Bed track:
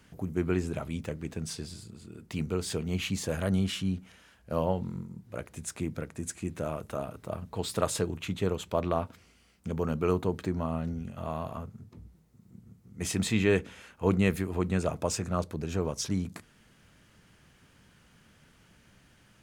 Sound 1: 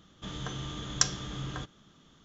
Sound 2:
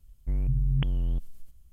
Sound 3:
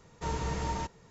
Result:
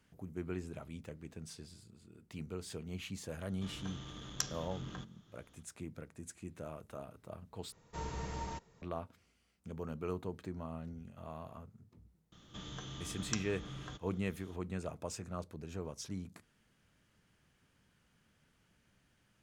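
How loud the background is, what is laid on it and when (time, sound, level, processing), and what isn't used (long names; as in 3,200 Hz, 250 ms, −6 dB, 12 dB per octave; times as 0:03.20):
bed track −12 dB
0:03.39: mix in 1 −8 dB + saturating transformer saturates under 2,600 Hz
0:07.72: overwrite with 3 −8 dB
0:12.32: mix in 1 −9 dB + multiband upward and downward compressor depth 40%
not used: 2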